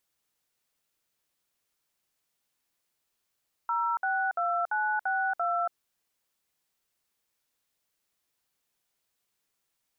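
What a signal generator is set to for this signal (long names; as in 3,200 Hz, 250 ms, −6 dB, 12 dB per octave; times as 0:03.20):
touch tones "062962", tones 281 ms, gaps 60 ms, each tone −28 dBFS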